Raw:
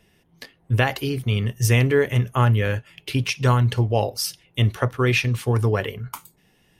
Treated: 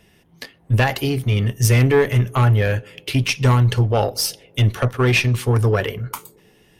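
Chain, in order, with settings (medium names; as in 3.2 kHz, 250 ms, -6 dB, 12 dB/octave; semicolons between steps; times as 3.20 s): single-diode clipper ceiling -16 dBFS; band-passed feedback delay 125 ms, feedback 73%, band-pass 340 Hz, level -23 dB; trim +5.5 dB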